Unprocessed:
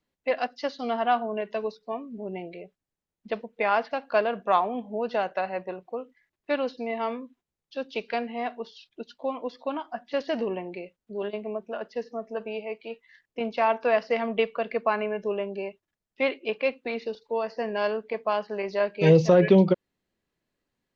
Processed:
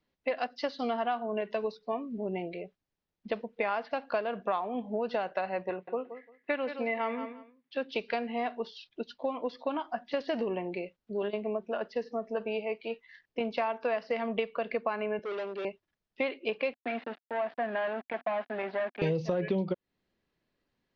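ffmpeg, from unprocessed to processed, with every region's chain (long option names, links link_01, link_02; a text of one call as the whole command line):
ffmpeg -i in.wav -filter_complex "[0:a]asettb=1/sr,asplit=3[link_01][link_02][link_03];[link_01]atrim=end=5.704[link_04];[link_02]atrim=start=5.7:end=7.92,asetpts=PTS-STARTPTS,afade=type=in:duration=0.004:curve=qsin,afade=type=out:start_time=2.216:duration=0.004:curve=qsin,highpass=160,lowpass=3400,equalizer=frequency=2000:width=2.2:gain=8,aecho=1:1:173|346:0.224|0.0425,atrim=end_sample=97902[link_05];[link_03]atrim=start=7.916[link_06];[link_04][link_05]acrossfade=duration=0.004:curve1=hsin:curve2=qsin[link_07];[link_07][link_06]acrossfade=duration=0.004:curve1=qsin:curve2=hsin,asettb=1/sr,asplit=3[link_08][link_09][link_10];[link_08]atrim=end=15.194[link_11];[link_09]atrim=start=15.19:end=15.65,asetpts=PTS-STARTPTS,afade=type=in:duration=0.004:curve=qsin,afade=type=out:start_time=0.456:duration=0.004:curve=qsin,asoftclip=type=hard:threshold=-32.5dB,highpass=350,lowpass=4500[link_12];[link_10]atrim=start=15.646[link_13];[link_11][link_12]acrossfade=duration=0.004:curve1=hsin:curve2=qsin[link_14];[link_14][link_13]acrossfade=duration=0.004:curve1=qsin:curve2=hsin,asettb=1/sr,asplit=3[link_15][link_16][link_17];[link_15]atrim=end=16.734[link_18];[link_16]atrim=start=16.73:end=19.02,asetpts=PTS-STARTPTS,afade=type=in:duration=0.004:curve=qsin,afade=type=out:start_time=2.286:duration=0.004:curve=qsin,aeval=exprs='val(0)*gte(abs(val(0)),0.00794)':channel_layout=same,aeval=exprs='(tanh(25.1*val(0)+0.35)-tanh(0.35))/25.1':channel_layout=same,highpass=250,equalizer=frequency=250:width_type=q:width=4:gain=6,equalizer=frequency=450:width_type=q:width=4:gain=-9,equalizer=frequency=710:width_type=q:width=4:gain=9,equalizer=frequency=1700:width_type=q:width=4:gain=7,lowpass=frequency=3100:width=0.5412,lowpass=frequency=3100:width=1.3066[link_19];[link_17]atrim=start=19.016[link_20];[link_18][link_19]acrossfade=duration=0.004:curve1=hsin:curve2=qsin[link_21];[link_21][link_20]acrossfade=duration=0.004:curve1=qsin:curve2=hsin,lowpass=frequency=5500:width=0.5412,lowpass=frequency=5500:width=1.3066,acompressor=threshold=-29dB:ratio=6,volume=1.5dB" out.wav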